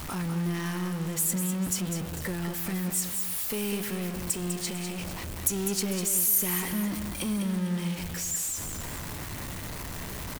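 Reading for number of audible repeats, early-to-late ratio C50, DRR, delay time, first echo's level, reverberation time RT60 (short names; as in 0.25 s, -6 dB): 2, none, none, 0.2 s, -7.5 dB, none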